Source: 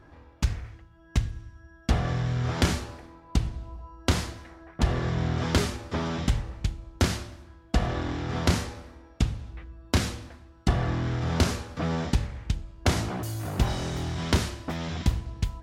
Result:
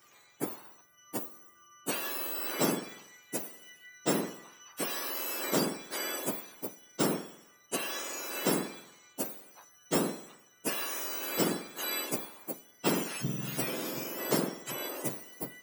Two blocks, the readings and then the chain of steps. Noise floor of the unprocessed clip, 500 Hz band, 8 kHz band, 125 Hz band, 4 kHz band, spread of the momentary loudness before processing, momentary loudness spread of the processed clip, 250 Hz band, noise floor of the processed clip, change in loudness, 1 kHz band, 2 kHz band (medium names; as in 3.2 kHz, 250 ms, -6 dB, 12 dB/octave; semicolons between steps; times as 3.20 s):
-54 dBFS, -1.0 dB, +2.0 dB, -17.0 dB, -4.0 dB, 15 LU, 15 LU, -4.5 dB, -61 dBFS, -4.5 dB, -4.5 dB, -3.5 dB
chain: spectrum inverted on a logarithmic axis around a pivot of 1.4 kHz; trim -1 dB